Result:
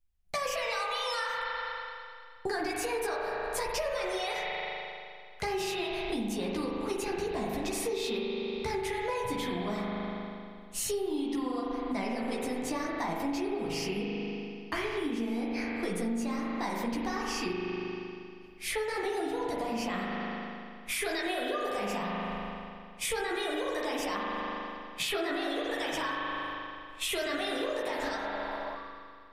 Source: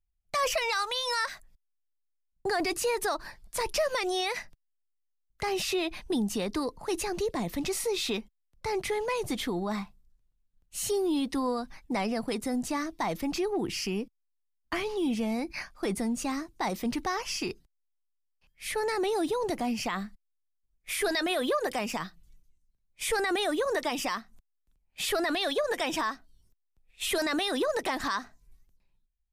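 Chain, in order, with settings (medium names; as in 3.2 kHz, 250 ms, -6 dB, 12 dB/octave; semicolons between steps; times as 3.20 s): chorus voices 4, 0.45 Hz, delay 14 ms, depth 4 ms; spring tank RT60 2.2 s, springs 39 ms, chirp 70 ms, DRR -2 dB; compression, threshold -35 dBFS, peak gain reduction 12.5 dB; spectral replace 28.00–28.73 s, 570–1200 Hz before; trim +5 dB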